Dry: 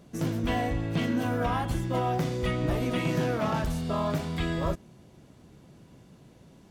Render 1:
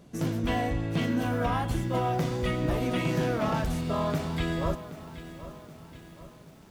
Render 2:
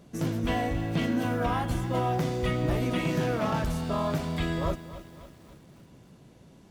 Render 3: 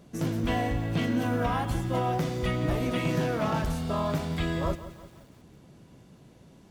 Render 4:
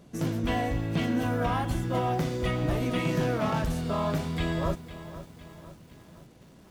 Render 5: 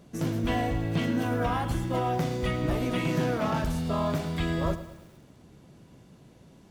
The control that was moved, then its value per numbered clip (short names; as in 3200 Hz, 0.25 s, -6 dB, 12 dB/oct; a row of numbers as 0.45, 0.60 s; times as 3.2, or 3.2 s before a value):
lo-fi delay, time: 0.775, 0.276, 0.172, 0.504, 0.109 s